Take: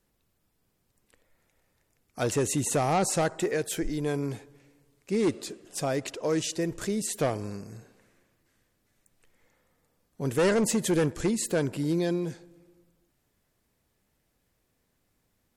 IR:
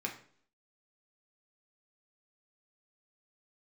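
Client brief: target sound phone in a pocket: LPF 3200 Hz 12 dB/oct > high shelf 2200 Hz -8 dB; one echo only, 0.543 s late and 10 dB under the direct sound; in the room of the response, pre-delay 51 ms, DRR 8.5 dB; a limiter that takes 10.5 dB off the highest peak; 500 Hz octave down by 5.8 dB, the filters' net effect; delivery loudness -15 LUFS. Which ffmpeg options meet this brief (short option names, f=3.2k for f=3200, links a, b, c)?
-filter_complex "[0:a]equalizer=f=500:t=o:g=-7,alimiter=level_in=3.5dB:limit=-24dB:level=0:latency=1,volume=-3.5dB,aecho=1:1:543:0.316,asplit=2[a][b];[1:a]atrim=start_sample=2205,adelay=51[c];[b][c]afir=irnorm=-1:irlink=0,volume=-11dB[d];[a][d]amix=inputs=2:normalize=0,lowpass=3.2k,highshelf=f=2.2k:g=-8,volume=22.5dB"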